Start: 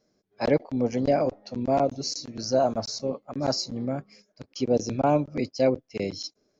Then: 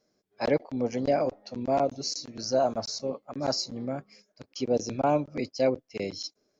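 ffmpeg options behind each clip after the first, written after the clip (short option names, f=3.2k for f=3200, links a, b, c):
-af "lowshelf=f=290:g=-5.5,volume=-1dB"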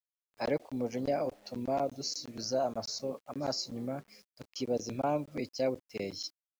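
-filter_complex "[0:a]asplit=2[a][b];[b]acompressor=threshold=-33dB:ratio=10,volume=1dB[c];[a][c]amix=inputs=2:normalize=0,acrusher=bits=8:mix=0:aa=0.000001,volume=-8.5dB"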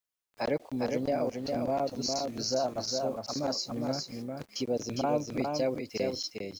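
-filter_complex "[0:a]asplit=2[a][b];[b]acompressor=threshold=-38dB:ratio=6,volume=1dB[c];[a][c]amix=inputs=2:normalize=0,aecho=1:1:407:0.631,volume=-1.5dB"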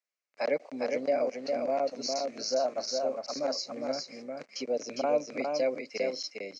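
-af "highpass=f=220:w=0.5412,highpass=f=220:w=1.3066,equalizer=f=220:t=q:w=4:g=-6,equalizer=f=340:t=q:w=4:g=-8,equalizer=f=580:t=q:w=4:g=5,equalizer=f=910:t=q:w=4:g=-5,equalizer=f=2.2k:t=q:w=4:g=7,equalizer=f=3.4k:t=q:w=4:g=-9,lowpass=f=6.7k:w=0.5412,lowpass=f=6.7k:w=1.3066"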